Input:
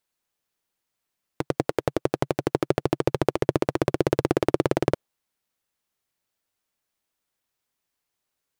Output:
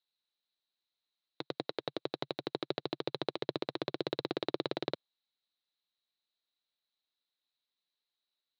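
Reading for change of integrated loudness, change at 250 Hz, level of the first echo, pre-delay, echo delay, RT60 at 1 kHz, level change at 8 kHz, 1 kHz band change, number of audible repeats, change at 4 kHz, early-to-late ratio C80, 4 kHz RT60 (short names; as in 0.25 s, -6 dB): -12.5 dB, -14.0 dB, none, none, none, none, under -20 dB, -12.5 dB, none, -0.5 dB, none, none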